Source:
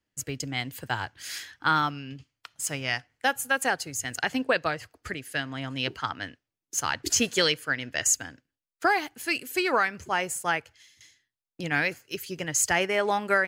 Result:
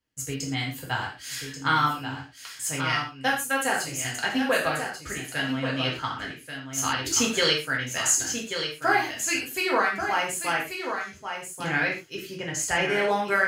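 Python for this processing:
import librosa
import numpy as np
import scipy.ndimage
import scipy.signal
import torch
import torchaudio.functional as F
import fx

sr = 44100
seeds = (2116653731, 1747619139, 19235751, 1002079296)

p1 = fx.high_shelf(x, sr, hz=7100.0, db=-11.0, at=(11.72, 12.85))
p2 = p1 + fx.echo_single(p1, sr, ms=1136, db=-7.5, dry=0)
p3 = fx.rev_gated(p2, sr, seeds[0], gate_ms=150, shape='falling', drr_db=-3.0)
y = F.gain(torch.from_numpy(p3), -3.5).numpy()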